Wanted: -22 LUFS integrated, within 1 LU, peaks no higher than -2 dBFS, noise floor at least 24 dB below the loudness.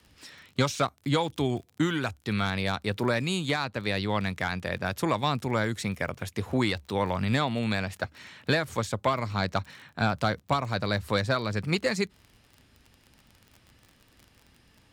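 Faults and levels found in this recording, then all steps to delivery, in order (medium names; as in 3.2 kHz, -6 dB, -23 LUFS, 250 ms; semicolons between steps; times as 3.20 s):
tick rate 35 per s; loudness -29.0 LUFS; peak level -12.5 dBFS; loudness target -22.0 LUFS
-> de-click; trim +7 dB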